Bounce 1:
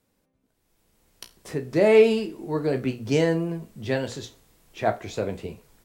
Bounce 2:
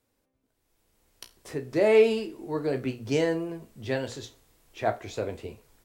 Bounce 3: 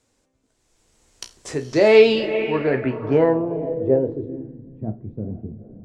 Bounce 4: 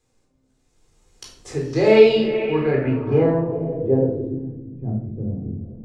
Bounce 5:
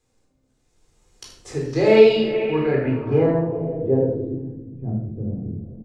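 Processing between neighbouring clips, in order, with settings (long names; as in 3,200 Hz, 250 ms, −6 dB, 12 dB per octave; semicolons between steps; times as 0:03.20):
parametric band 180 Hz −12.5 dB 0.3 octaves; level −3 dB
feedback delay with all-pass diffusion 457 ms, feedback 45%, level −12 dB; low-pass filter sweep 7,300 Hz → 200 Hz, 0:01.59–0:04.70; level +7 dB
low-shelf EQ 220 Hz +4 dB; rectangular room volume 980 cubic metres, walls furnished, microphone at 3.9 metres; level −7 dB
single-tap delay 78 ms −10.5 dB; level −1 dB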